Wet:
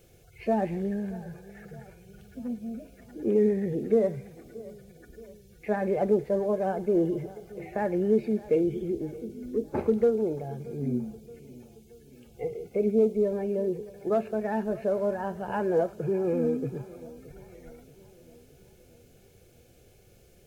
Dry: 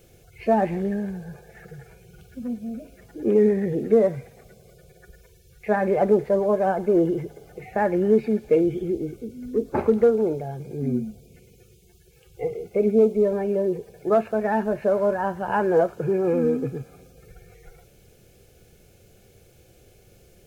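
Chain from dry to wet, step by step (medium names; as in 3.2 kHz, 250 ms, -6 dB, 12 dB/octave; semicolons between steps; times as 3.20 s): dynamic bell 1.2 kHz, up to -6 dB, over -37 dBFS, Q 0.83; filtered feedback delay 626 ms, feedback 55%, low-pass 2 kHz, level -19.5 dB; trim -4 dB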